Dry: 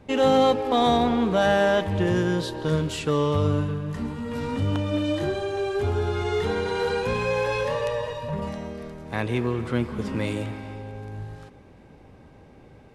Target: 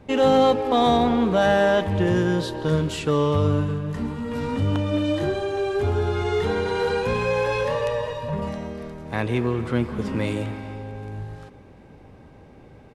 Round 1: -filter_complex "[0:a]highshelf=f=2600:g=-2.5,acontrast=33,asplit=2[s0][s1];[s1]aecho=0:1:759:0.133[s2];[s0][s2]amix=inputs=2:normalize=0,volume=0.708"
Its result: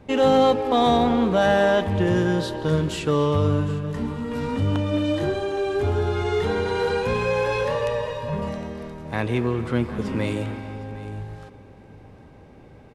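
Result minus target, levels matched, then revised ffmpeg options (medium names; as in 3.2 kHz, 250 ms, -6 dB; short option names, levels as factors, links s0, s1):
echo-to-direct +10 dB
-filter_complex "[0:a]highshelf=f=2600:g=-2.5,acontrast=33,asplit=2[s0][s1];[s1]aecho=0:1:759:0.0422[s2];[s0][s2]amix=inputs=2:normalize=0,volume=0.708"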